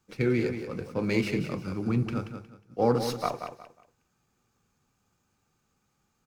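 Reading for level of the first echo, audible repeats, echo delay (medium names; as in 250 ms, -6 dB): -8.5 dB, 3, 181 ms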